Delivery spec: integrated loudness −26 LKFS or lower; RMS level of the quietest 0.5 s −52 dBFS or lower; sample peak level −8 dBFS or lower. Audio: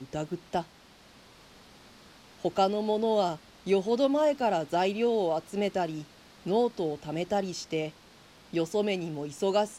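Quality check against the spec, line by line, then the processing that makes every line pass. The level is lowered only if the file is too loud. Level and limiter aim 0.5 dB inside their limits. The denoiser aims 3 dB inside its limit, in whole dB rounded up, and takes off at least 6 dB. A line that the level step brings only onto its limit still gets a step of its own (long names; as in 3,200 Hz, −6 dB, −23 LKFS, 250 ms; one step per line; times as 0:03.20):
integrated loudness −29.5 LKFS: in spec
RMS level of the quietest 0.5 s −55 dBFS: in spec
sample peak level −13.0 dBFS: in spec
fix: no processing needed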